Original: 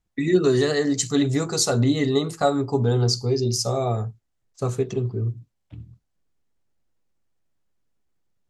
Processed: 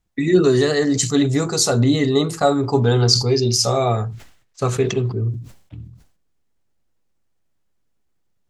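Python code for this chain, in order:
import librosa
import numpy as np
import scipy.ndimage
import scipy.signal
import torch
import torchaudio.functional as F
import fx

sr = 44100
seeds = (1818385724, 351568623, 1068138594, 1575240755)

y = fx.peak_eq(x, sr, hz=2300.0, db=8.5, octaves=2.4, at=(2.63, 5.12))
y = fx.sustainer(y, sr, db_per_s=100.0)
y = y * librosa.db_to_amplitude(3.5)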